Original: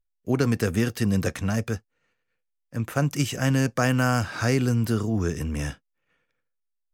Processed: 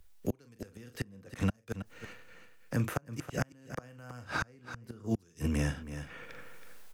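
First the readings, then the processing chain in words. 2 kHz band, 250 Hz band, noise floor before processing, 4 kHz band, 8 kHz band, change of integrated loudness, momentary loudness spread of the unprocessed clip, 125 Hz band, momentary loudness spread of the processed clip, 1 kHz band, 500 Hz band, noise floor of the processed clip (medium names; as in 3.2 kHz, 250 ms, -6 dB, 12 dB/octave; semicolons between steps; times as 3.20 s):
-10.0 dB, -12.0 dB, -78 dBFS, -13.0 dB, -13.5 dB, -12.5 dB, 9 LU, -12.0 dB, 16 LU, -11.5 dB, -13.5 dB, -62 dBFS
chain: dynamic bell 500 Hz, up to +5 dB, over -42 dBFS, Q 7.8; doubling 41 ms -10 dB; reverse; upward compressor, threshold -42 dBFS; reverse; inverted gate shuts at -16 dBFS, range -38 dB; on a send: delay 323 ms -16.5 dB; on the sum: three bands compressed up and down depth 70%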